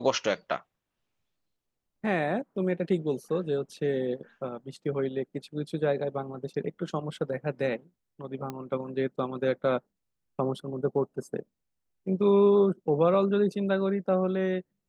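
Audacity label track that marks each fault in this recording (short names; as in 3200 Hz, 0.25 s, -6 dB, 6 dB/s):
8.500000	8.500000	pop -21 dBFS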